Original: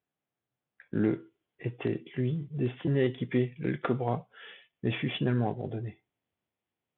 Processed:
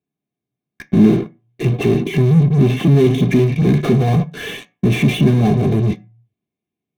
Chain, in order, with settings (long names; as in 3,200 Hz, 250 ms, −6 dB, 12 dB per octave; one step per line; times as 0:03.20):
dynamic equaliser 320 Hz, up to −5 dB, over −44 dBFS, Q 3.3
in parallel at −8.5 dB: fuzz pedal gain 53 dB, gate −56 dBFS
on the sum: convolution reverb RT60 0.30 s, pre-delay 3 ms, DRR 8 dB
level −5.5 dB